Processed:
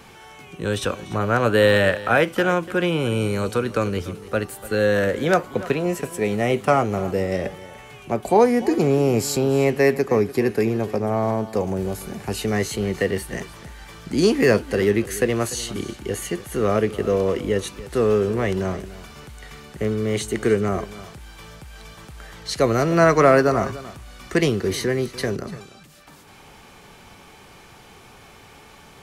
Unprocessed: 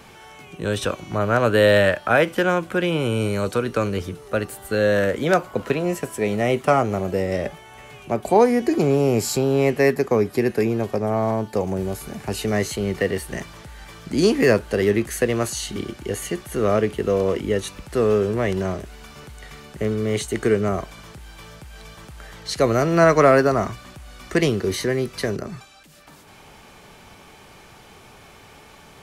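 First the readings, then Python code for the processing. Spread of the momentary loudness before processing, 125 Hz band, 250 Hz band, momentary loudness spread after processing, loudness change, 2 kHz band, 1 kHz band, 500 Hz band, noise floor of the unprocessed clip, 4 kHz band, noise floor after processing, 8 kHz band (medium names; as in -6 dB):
14 LU, 0.0 dB, 0.0 dB, 17 LU, 0.0 dB, 0.0 dB, 0.0 dB, -0.5 dB, -47 dBFS, 0.0 dB, -47 dBFS, 0.0 dB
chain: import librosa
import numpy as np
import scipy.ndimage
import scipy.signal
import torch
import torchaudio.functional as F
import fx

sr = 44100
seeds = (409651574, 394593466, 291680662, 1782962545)

y = fx.notch(x, sr, hz=620.0, q=16.0)
y = y + 10.0 ** (-17.0 / 20.0) * np.pad(y, (int(293 * sr / 1000.0), 0))[:len(y)]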